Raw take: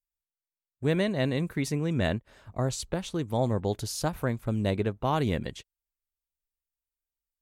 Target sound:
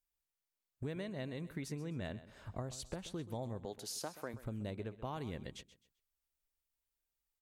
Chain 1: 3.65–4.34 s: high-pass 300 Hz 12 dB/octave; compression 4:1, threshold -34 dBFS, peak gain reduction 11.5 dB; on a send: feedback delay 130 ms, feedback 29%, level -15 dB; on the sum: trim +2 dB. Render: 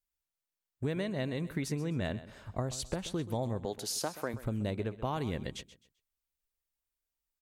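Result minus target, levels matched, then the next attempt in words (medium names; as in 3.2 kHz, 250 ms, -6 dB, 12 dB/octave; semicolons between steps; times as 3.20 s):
compression: peak gain reduction -8 dB
3.65–4.34 s: high-pass 300 Hz 12 dB/octave; compression 4:1, threshold -44.5 dBFS, peak gain reduction 19.5 dB; on a send: feedback delay 130 ms, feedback 29%, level -15 dB; on the sum: trim +2 dB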